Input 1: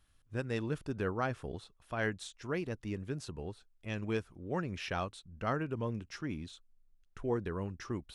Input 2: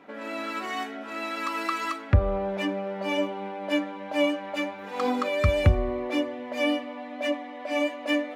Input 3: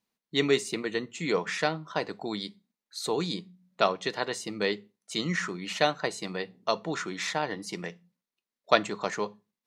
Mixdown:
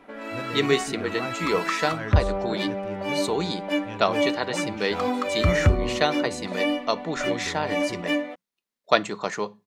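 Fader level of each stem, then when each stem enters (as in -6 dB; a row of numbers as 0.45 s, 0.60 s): -1.0 dB, +0.5 dB, +2.5 dB; 0.00 s, 0.00 s, 0.20 s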